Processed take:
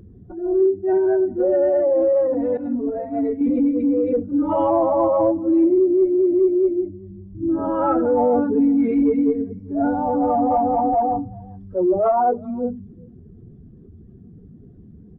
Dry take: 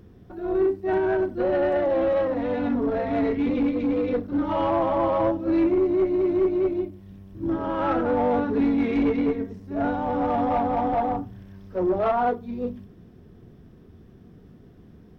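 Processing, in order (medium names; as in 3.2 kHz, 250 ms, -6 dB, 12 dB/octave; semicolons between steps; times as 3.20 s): spectral contrast enhancement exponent 1.7; 2.57–3.41 s: expander -19 dBFS; echo from a far wall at 67 m, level -25 dB; trim +5 dB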